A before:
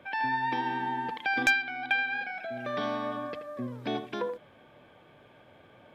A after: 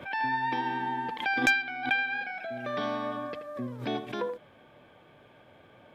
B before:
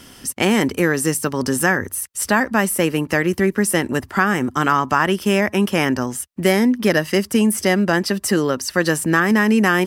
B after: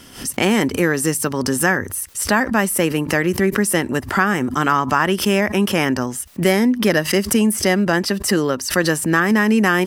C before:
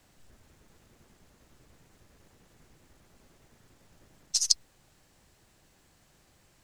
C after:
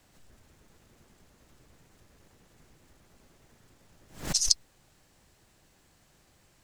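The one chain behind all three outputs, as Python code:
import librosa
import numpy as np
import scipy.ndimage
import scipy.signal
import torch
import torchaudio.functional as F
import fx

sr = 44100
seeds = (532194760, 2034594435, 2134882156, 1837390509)

y = fx.pre_swell(x, sr, db_per_s=130.0)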